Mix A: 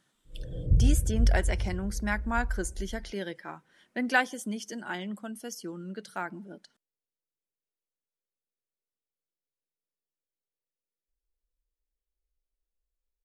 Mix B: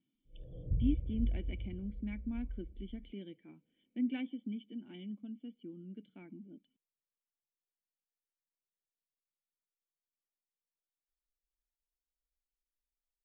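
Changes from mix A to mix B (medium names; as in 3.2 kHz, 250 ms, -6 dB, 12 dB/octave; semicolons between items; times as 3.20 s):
speech: add cascade formant filter i; background -11.0 dB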